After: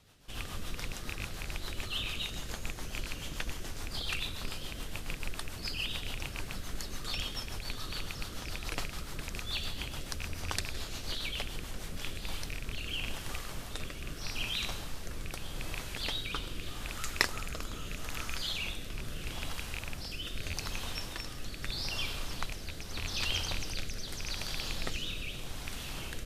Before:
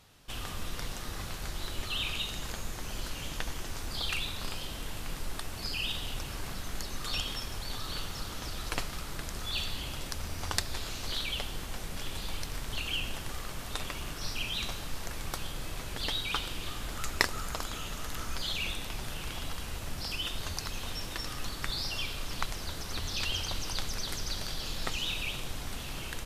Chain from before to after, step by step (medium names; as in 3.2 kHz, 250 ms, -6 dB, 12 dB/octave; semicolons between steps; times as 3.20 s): rattle on loud lows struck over -35 dBFS, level -22 dBFS; rotary cabinet horn 7 Hz, later 0.8 Hz, at 11.61 s